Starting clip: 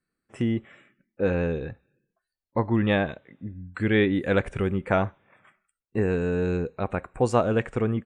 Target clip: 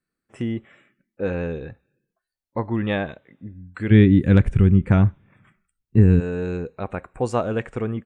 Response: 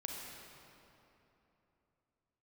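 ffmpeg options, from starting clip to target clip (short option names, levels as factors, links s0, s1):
-filter_complex "[0:a]asplit=3[s0][s1][s2];[s0]afade=t=out:st=3.9:d=0.02[s3];[s1]asubboost=boost=10.5:cutoff=210,afade=t=in:st=3.9:d=0.02,afade=t=out:st=6.19:d=0.02[s4];[s2]afade=t=in:st=6.19:d=0.02[s5];[s3][s4][s5]amix=inputs=3:normalize=0,volume=0.891"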